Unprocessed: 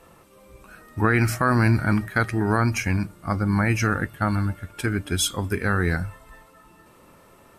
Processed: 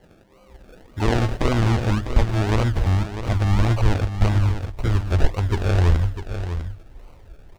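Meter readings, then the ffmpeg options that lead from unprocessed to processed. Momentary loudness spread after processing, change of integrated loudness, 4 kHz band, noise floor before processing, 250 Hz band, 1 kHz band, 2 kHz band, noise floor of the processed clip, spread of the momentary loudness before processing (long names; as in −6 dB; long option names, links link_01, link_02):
9 LU, +1.0 dB, −1.5 dB, −53 dBFS, −2.0 dB, −2.0 dB, −6.5 dB, −51 dBFS, 8 LU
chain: -filter_complex "[0:a]acrusher=samples=35:mix=1:aa=0.000001:lfo=1:lforange=21:lforate=1.8,highshelf=frequency=5200:gain=-7,acrossover=split=8500[link_01][link_02];[link_02]acompressor=threshold=-51dB:ratio=4:attack=1:release=60[link_03];[link_01][link_03]amix=inputs=2:normalize=0,asubboost=boost=10:cutoff=64,asplit=2[link_04][link_05];[link_05]aecho=0:1:650:0.335[link_06];[link_04][link_06]amix=inputs=2:normalize=0"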